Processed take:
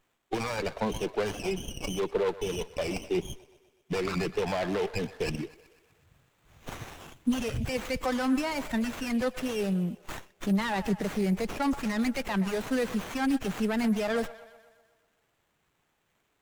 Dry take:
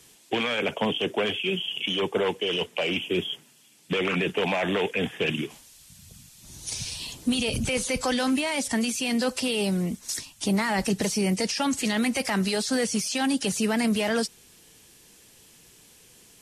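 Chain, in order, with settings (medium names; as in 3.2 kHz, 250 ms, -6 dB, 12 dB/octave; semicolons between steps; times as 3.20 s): expander on every frequency bin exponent 1.5; feedback echo behind a band-pass 124 ms, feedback 57%, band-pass 1.1 kHz, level -13.5 dB; sliding maximum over 9 samples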